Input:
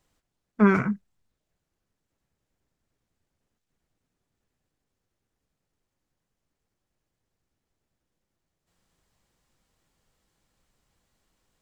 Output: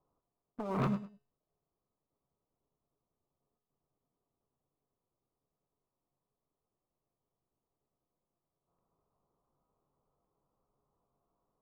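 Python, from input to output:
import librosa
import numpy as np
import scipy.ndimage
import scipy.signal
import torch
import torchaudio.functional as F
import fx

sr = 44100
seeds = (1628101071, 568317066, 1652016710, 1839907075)

y = fx.self_delay(x, sr, depth_ms=0.64)
y = scipy.signal.sosfilt(scipy.signal.ellip(4, 1.0, 40, 1200.0, 'lowpass', fs=sr, output='sos'), y)
y = fx.low_shelf(y, sr, hz=190.0, db=-9.5)
y = fx.over_compress(y, sr, threshold_db=-37.0, ratio=-1.0)
y = fx.leveller(y, sr, passes=3)
y = fx.comb_fb(y, sr, f0_hz=140.0, decay_s=0.41, harmonics='odd', damping=0.0, mix_pct=70)
y = fx.echo_feedback(y, sr, ms=103, feedback_pct=20, wet_db=-13.5)
y = F.gain(torch.from_numpy(y), 3.5).numpy()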